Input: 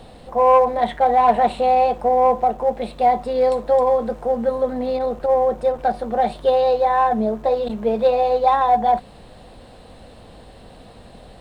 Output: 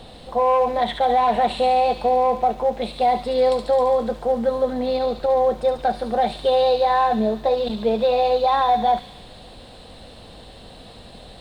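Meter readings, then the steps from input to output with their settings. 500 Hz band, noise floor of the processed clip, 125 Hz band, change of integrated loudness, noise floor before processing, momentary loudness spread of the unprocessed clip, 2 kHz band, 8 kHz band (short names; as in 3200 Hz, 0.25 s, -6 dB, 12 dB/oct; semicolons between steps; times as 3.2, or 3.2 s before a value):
-1.5 dB, -43 dBFS, -0.5 dB, -1.5 dB, -44 dBFS, 7 LU, 0.0 dB, n/a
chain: bell 3700 Hz +7 dB 0.82 oct; limiter -11 dBFS, peak gain reduction 6 dB; thin delay 71 ms, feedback 72%, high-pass 3300 Hz, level -4 dB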